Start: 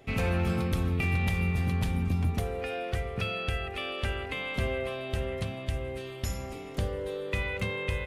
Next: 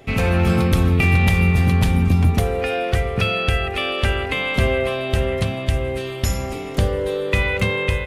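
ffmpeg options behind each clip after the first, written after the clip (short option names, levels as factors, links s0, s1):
-af "dynaudnorm=f=280:g=3:m=1.41,volume=2.82"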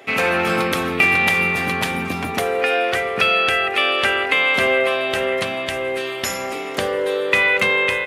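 -af "highpass=340,equalizer=f=1700:w=0.82:g=5.5,volume=1.33"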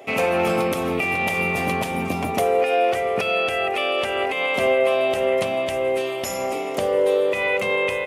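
-af "alimiter=limit=0.299:level=0:latency=1:release=181,equalizer=f=630:t=o:w=0.67:g=6,equalizer=f=1600:t=o:w=0.67:g=-10,equalizer=f=4000:t=o:w=0.67:g=-6"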